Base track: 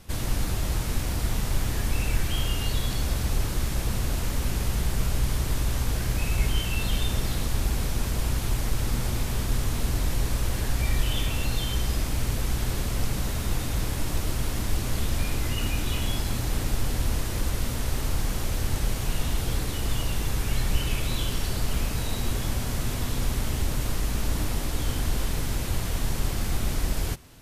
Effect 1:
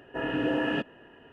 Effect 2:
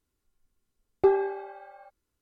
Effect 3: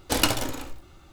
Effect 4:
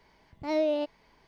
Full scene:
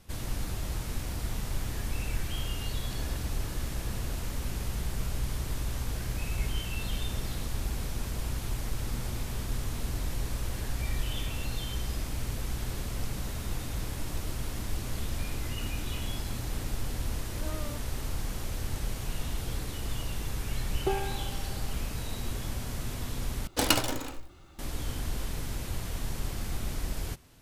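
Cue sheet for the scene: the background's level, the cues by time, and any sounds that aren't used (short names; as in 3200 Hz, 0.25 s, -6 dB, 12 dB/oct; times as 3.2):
base track -7 dB
2.84 add 1 -10 dB + negative-ratio compressor -40 dBFS
16.93 add 4 -12 dB + running maximum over 33 samples
19.83 add 2 -5.5 dB + comb 6.3 ms, depth 55%
23.47 replace with 3 -2.5 dB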